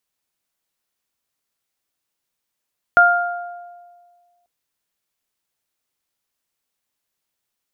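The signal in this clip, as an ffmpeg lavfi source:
ffmpeg -f lavfi -i "aevalsrc='0.237*pow(10,-3*t/1.74)*sin(2*PI*702*t)+0.473*pow(10,-3*t/0.95)*sin(2*PI*1404*t)':duration=1.49:sample_rate=44100" out.wav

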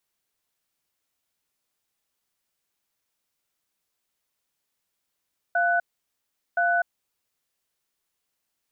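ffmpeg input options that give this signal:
ffmpeg -f lavfi -i "aevalsrc='0.0794*(sin(2*PI*695*t)+sin(2*PI*1490*t))*clip(min(mod(t,1.02),0.25-mod(t,1.02))/0.005,0,1)':duration=1.74:sample_rate=44100" out.wav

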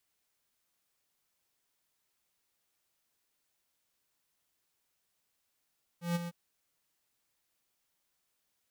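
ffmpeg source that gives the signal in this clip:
ffmpeg -f lavfi -i "aevalsrc='0.0335*(2*lt(mod(172*t,1),0.5)-1)':duration=0.305:sample_rate=44100,afade=type=in:duration=0.143,afade=type=out:start_time=0.143:duration=0.025:silence=0.335,afade=type=out:start_time=0.27:duration=0.035" out.wav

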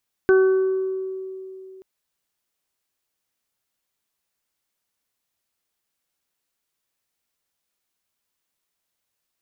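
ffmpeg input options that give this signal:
ffmpeg -f lavfi -i "aevalsrc='0.282*pow(10,-3*t/3.04)*sin(2*PI*379*t)+0.0316*pow(10,-3*t/0.79)*sin(2*PI*758*t)+0.0355*pow(10,-3*t/1.52)*sin(2*PI*1137*t)+0.0891*pow(10,-3*t/0.92)*sin(2*PI*1516*t)':duration=1.53:sample_rate=44100" out.wav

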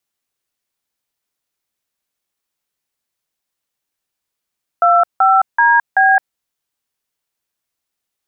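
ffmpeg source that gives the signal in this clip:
ffmpeg -f lavfi -i "aevalsrc='0.299*clip(min(mod(t,0.382),0.215-mod(t,0.382))/0.002,0,1)*(eq(floor(t/0.382),0)*(sin(2*PI*697*mod(t,0.382))+sin(2*PI*1336*mod(t,0.382)))+eq(floor(t/0.382),1)*(sin(2*PI*770*mod(t,0.382))+sin(2*PI*1336*mod(t,0.382)))+eq(floor(t/0.382),2)*(sin(2*PI*941*mod(t,0.382))+sin(2*PI*1633*mod(t,0.382)))+eq(floor(t/0.382),3)*(sin(2*PI*770*mod(t,0.382))+sin(2*PI*1633*mod(t,0.382))))':duration=1.528:sample_rate=44100" out.wav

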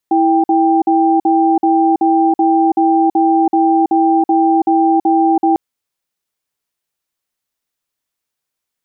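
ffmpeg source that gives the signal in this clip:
ffmpeg -f lavfi -i "aevalsrc='0.266*(sin(2*PI*328*t)+sin(2*PI*789*t))*clip(min(mod(t,0.38),0.33-mod(t,0.38))/0.005,0,1)':duration=5.45:sample_rate=44100" out.wav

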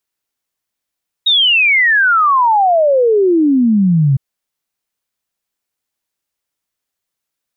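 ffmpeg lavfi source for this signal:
ffmpeg -f lavfi -i "aevalsrc='0.398*clip(min(t,2.91-t)/0.01,0,1)*sin(2*PI*3800*2.91/log(130/3800)*(exp(log(130/3800)*t/2.91)-1))':duration=2.91:sample_rate=44100" out.wav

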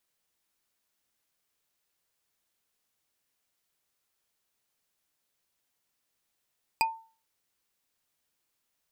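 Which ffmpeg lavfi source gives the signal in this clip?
ffmpeg -f lavfi -i "aevalsrc='0.1*pow(10,-3*t/0.38)*sin(2*PI*898*t)+0.0794*pow(10,-3*t/0.113)*sin(2*PI*2475.8*t)+0.0631*pow(10,-3*t/0.05)*sin(2*PI*4852.8*t)+0.0501*pow(10,-3*t/0.027)*sin(2*PI*8021.8*t)+0.0398*pow(10,-3*t/0.017)*sin(2*PI*11979.3*t)':duration=0.45:sample_rate=44100" out.wav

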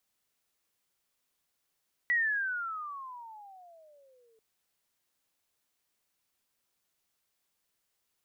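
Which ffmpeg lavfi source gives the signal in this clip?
ffmpeg -f lavfi -i "aevalsrc='pow(10,(-23.5-40*t/2.29)/20)*sin(2*PI*1960*2.29/(-26*log(2)/12)*(exp(-26*log(2)/12*t/2.29)-1))':duration=2.29:sample_rate=44100" out.wav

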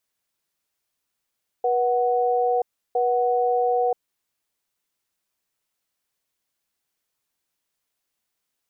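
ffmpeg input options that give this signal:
ffmpeg -f lavfi -i "aevalsrc='0.0891*(sin(2*PI*485*t)+sin(2*PI*741*t))*clip(min(mod(t,1.31),0.98-mod(t,1.31))/0.005,0,1)':duration=2.4:sample_rate=44100" out.wav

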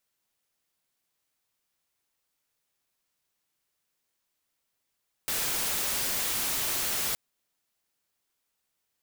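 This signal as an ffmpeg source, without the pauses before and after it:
ffmpeg -f lavfi -i "anoisesrc=color=white:amplitude=0.058:duration=1.87:sample_rate=44100:seed=1" out.wav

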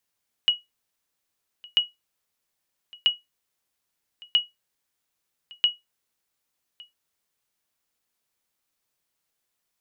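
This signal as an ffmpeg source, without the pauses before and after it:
ffmpeg -f lavfi -i "aevalsrc='0.282*(sin(2*PI*2910*mod(t,1.29))*exp(-6.91*mod(t,1.29)/0.18)+0.0562*sin(2*PI*2910*max(mod(t,1.29)-1.16,0))*exp(-6.91*max(mod(t,1.29)-1.16,0)/0.18))':duration=6.45:sample_rate=44100" out.wav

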